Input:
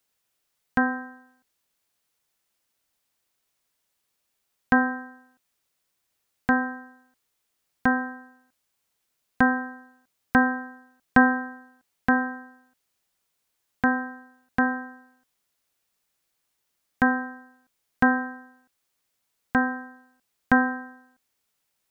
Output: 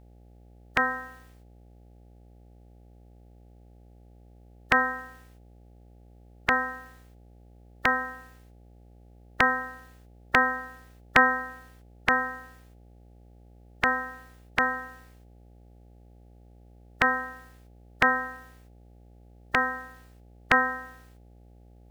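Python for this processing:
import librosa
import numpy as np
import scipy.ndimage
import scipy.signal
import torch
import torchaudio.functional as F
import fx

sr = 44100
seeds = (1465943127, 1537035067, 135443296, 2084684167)

y = fx.spec_clip(x, sr, under_db=27)
y = fx.dmg_buzz(y, sr, base_hz=60.0, harmonics=14, level_db=-47.0, tilt_db=-7, odd_only=False)
y = fx.peak_eq(y, sr, hz=1900.0, db=7.5, octaves=2.3)
y = y * 10.0 ** (-6.0 / 20.0)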